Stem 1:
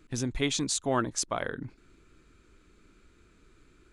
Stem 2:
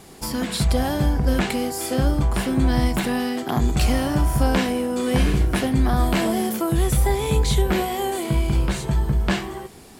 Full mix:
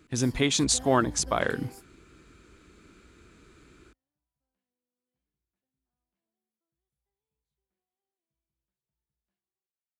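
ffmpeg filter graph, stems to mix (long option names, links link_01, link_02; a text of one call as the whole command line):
ffmpeg -i stem1.wav -i stem2.wav -filter_complex "[0:a]alimiter=limit=-17dB:level=0:latency=1:release=249,dynaudnorm=framelen=130:gausssize=3:maxgain=4.5dB,volume=2dB,asplit=2[link_01][link_02];[1:a]volume=-20dB[link_03];[link_02]apad=whole_len=440562[link_04];[link_03][link_04]sidechaingate=range=-50dB:threshold=-45dB:ratio=16:detection=peak[link_05];[link_01][link_05]amix=inputs=2:normalize=0,highpass=53" out.wav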